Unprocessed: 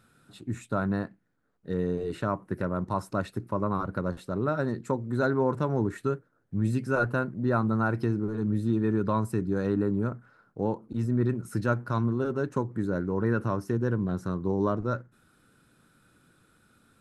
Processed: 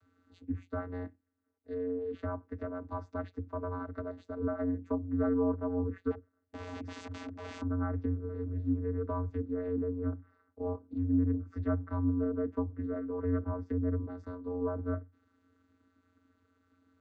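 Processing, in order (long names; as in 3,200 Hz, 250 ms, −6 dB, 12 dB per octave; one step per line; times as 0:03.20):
0:06.10–0:07.61: wrap-around overflow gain 29 dB
channel vocoder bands 16, square 89.7 Hz
treble cut that deepens with the level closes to 1,400 Hz, closed at −24.5 dBFS
level −4.5 dB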